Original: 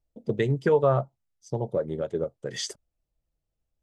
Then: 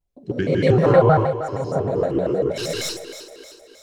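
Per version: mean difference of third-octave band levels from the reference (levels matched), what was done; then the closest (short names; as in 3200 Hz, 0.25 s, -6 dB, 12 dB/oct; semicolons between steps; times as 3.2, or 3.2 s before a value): 8.5 dB: tracing distortion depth 0.027 ms; on a send: split-band echo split 300 Hz, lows 84 ms, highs 0.31 s, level -11.5 dB; on the sum: non-linear reverb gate 0.29 s rising, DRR -6.5 dB; shaped vibrato square 6.4 Hz, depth 250 cents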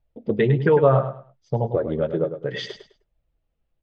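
3.5 dB: LPF 3500 Hz 24 dB/oct; in parallel at -2.5 dB: limiter -18 dBFS, peak gain reduction 7.5 dB; on the sum: flange 0.63 Hz, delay 1.1 ms, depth 6.7 ms, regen -39%; feedback echo 0.103 s, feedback 24%, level -9.5 dB; gain +5.5 dB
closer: second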